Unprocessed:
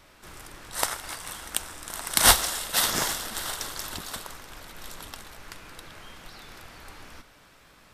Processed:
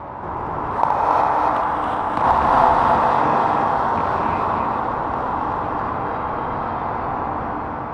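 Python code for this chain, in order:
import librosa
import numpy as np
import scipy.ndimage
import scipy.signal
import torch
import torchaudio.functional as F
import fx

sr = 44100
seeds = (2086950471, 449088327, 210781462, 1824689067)

p1 = fx.rattle_buzz(x, sr, strikes_db=-38.0, level_db=-16.0)
p2 = scipy.signal.sosfilt(scipy.signal.butter(2, 75.0, 'highpass', fs=sr, output='sos'), p1)
p3 = fx.rider(p2, sr, range_db=4, speed_s=2.0)
p4 = fx.lowpass_res(p3, sr, hz=930.0, q=4.1)
p5 = np.clip(p4, -10.0 ** (-1.0 / 20.0), 10.0 ** (-1.0 / 20.0))
p6 = fx.low_shelf(p5, sr, hz=320.0, db=4.0)
p7 = p6 + fx.echo_multitap(p6, sr, ms=(70, 276, 401), db=(-6.5, -3.0, -8.5), dry=0)
p8 = fx.rev_gated(p7, sr, seeds[0], gate_ms=390, shape='rising', drr_db=-5.5)
p9 = fx.env_flatten(p8, sr, amount_pct=50)
y = F.gain(torch.from_numpy(p9), -4.0).numpy()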